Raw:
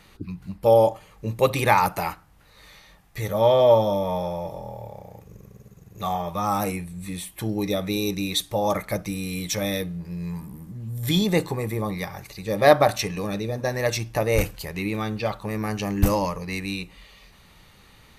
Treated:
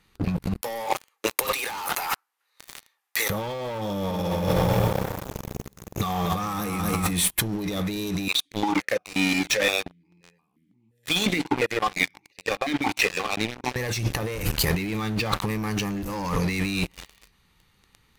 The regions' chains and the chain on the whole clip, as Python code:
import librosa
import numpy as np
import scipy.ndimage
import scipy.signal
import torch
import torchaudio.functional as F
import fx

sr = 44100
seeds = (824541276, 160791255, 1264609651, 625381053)

y = fx.chain(x, sr, fx.bessel_highpass(hz=740.0, order=4),
    fx.high_shelf(hz=11000.0, db=2.5),
    fx.leveller(passes=2), at=(0.61, 3.3))
y = fx.chain(y, sr, fx.peak_eq(hz=870.0, db=-8.0, octaves=0.28),
    fx.echo_crushed(ms=239, feedback_pct=55, bits=9, wet_db=-7), at=(3.86, 7.11))
y = fx.chain(y, sr, fx.high_shelf(hz=2000.0, db=11.5),
    fx.vowel_held(hz=5.7), at=(8.28, 13.76))
y = fx.peak_eq(y, sr, hz=620.0, db=-12.5, octaves=0.31)
y = fx.leveller(y, sr, passes=5)
y = fx.over_compress(y, sr, threshold_db=-19.0, ratio=-1.0)
y = y * librosa.db_to_amplitude(-7.0)